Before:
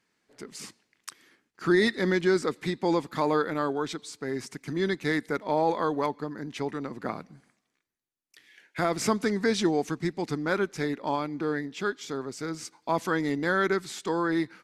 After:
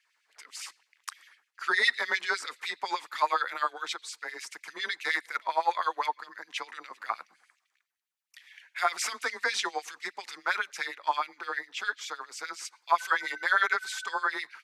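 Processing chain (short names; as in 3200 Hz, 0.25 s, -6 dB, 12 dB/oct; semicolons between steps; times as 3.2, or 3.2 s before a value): 12.98–14.24 whine 1500 Hz -42 dBFS; LFO high-pass sine 9.8 Hz 840–2900 Hz; frequency shift +23 Hz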